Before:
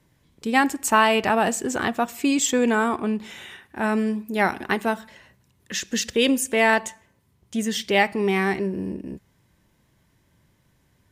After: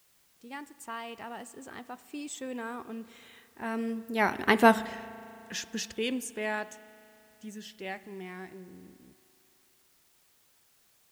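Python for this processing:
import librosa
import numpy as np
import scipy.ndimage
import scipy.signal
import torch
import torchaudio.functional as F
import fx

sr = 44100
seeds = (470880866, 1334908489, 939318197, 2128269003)

y = fx.doppler_pass(x, sr, speed_mps=16, closest_m=2.5, pass_at_s=4.76)
y = fx.quant_dither(y, sr, seeds[0], bits=12, dither='triangular')
y = fx.rev_spring(y, sr, rt60_s=3.1, pass_ms=(37,), chirp_ms=20, drr_db=17.0)
y = y * 10.0 ** (6.0 / 20.0)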